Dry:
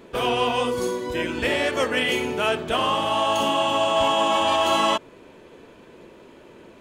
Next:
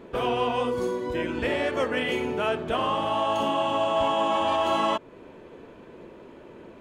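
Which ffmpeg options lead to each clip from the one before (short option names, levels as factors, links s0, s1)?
-filter_complex "[0:a]highshelf=f=2900:g=-11.5,asplit=2[s0][s1];[s1]acompressor=threshold=0.0251:ratio=6,volume=0.891[s2];[s0][s2]amix=inputs=2:normalize=0,volume=0.631"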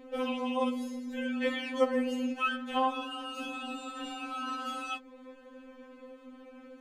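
-af "afftfilt=real='re*3.46*eq(mod(b,12),0)':imag='im*3.46*eq(mod(b,12),0)':win_size=2048:overlap=0.75,volume=0.794"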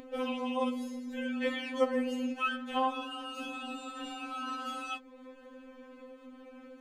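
-af "acompressor=mode=upward:threshold=0.00562:ratio=2.5,volume=0.841"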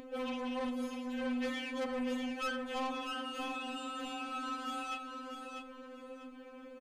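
-af "asoftclip=type=tanh:threshold=0.0211,aecho=1:1:646|1292|1938:0.473|0.118|0.0296"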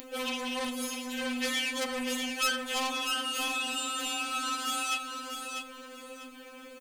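-af "crystalizer=i=9:c=0"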